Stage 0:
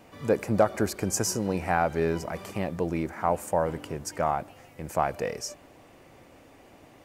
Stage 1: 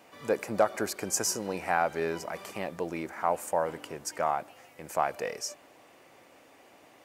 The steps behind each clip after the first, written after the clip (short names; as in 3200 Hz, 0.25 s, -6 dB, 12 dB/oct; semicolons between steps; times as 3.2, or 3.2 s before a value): HPF 550 Hz 6 dB/oct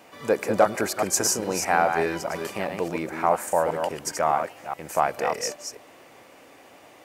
reverse delay 0.206 s, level -5.5 dB; gain +5.5 dB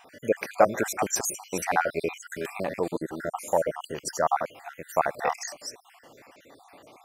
random spectral dropouts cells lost 58%